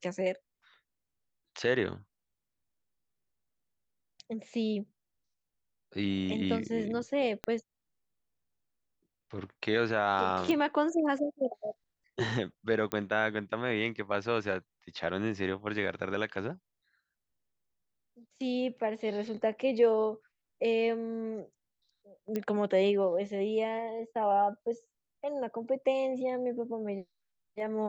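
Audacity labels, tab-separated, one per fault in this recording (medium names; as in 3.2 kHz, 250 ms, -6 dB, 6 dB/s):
7.440000	7.440000	pop -20 dBFS
10.510000	10.510000	pop -19 dBFS
12.920000	12.920000	pop -16 dBFS
22.360000	22.360000	pop -20 dBFS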